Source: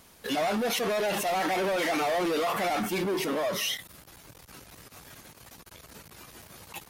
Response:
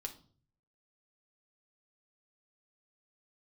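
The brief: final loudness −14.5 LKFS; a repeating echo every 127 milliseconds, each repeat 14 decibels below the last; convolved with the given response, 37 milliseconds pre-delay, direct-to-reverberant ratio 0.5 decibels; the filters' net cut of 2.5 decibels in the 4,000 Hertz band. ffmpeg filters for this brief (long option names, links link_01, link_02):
-filter_complex "[0:a]equalizer=frequency=4000:width_type=o:gain=-3.5,aecho=1:1:127|254:0.2|0.0399,asplit=2[link_01][link_02];[1:a]atrim=start_sample=2205,adelay=37[link_03];[link_02][link_03]afir=irnorm=-1:irlink=0,volume=1.5dB[link_04];[link_01][link_04]amix=inputs=2:normalize=0,volume=11dB"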